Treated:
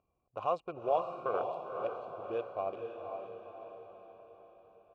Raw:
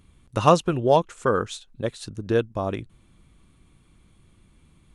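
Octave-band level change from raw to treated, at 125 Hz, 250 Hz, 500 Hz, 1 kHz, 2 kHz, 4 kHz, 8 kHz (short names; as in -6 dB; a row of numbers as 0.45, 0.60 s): -27.5 dB, -21.0 dB, -11.5 dB, -10.5 dB, -16.5 dB, under -20 dB, under -35 dB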